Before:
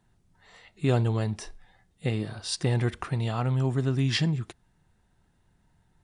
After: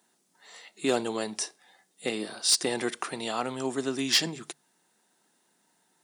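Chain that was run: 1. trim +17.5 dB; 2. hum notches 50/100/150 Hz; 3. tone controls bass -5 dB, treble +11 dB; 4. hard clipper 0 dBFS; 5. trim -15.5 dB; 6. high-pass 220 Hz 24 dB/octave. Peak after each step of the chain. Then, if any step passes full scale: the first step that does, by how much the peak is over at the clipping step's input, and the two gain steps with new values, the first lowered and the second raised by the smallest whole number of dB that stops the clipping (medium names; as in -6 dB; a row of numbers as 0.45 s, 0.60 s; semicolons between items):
+5.5 dBFS, +5.0 dBFS, +7.5 dBFS, 0.0 dBFS, -15.5 dBFS, -12.5 dBFS; step 1, 7.5 dB; step 1 +9.5 dB, step 5 -7.5 dB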